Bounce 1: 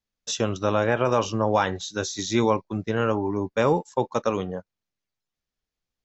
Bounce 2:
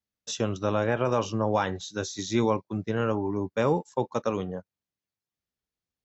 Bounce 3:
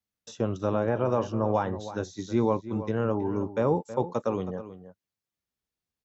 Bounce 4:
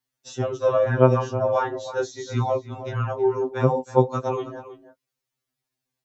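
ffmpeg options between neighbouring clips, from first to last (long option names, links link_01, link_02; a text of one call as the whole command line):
ffmpeg -i in.wav -af "highpass=67,lowshelf=frequency=390:gain=4,volume=-5dB" out.wav
ffmpeg -i in.wav -filter_complex "[0:a]acrossover=split=1300[link_01][link_02];[link_02]acompressor=threshold=-48dB:ratio=4[link_03];[link_01][link_03]amix=inputs=2:normalize=0,asplit=2[link_04][link_05];[link_05]adelay=320.7,volume=-13dB,highshelf=frequency=4000:gain=-7.22[link_06];[link_04][link_06]amix=inputs=2:normalize=0" out.wav
ffmpeg -i in.wav -af "afftfilt=real='re*2.45*eq(mod(b,6),0)':imag='im*2.45*eq(mod(b,6),0)':win_size=2048:overlap=0.75,volume=8dB" out.wav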